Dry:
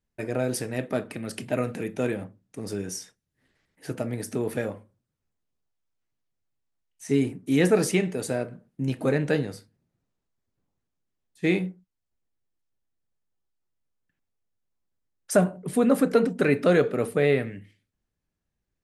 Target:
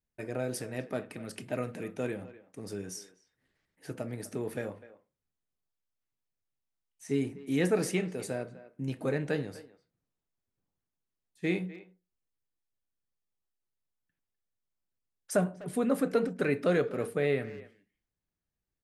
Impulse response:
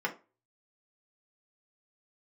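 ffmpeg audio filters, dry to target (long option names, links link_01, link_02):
-filter_complex "[0:a]asplit=2[link_01][link_02];[link_02]adelay=250,highpass=300,lowpass=3400,asoftclip=type=hard:threshold=-17.5dB,volume=-16dB[link_03];[link_01][link_03]amix=inputs=2:normalize=0,asplit=2[link_04][link_05];[1:a]atrim=start_sample=2205[link_06];[link_05][link_06]afir=irnorm=-1:irlink=0,volume=-24dB[link_07];[link_04][link_07]amix=inputs=2:normalize=0,volume=-7.5dB"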